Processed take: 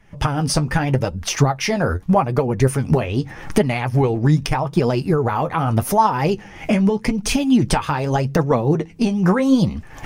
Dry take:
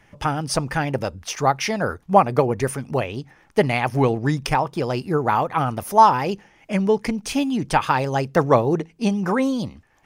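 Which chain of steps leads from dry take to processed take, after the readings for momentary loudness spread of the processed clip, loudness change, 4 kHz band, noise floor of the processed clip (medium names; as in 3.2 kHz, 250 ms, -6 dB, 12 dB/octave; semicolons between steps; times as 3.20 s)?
5 LU, +2.0 dB, +3.5 dB, -39 dBFS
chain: recorder AGC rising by 47 dB/s; bass shelf 170 Hz +10.5 dB; flange 0.82 Hz, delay 4 ms, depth 9.6 ms, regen +43%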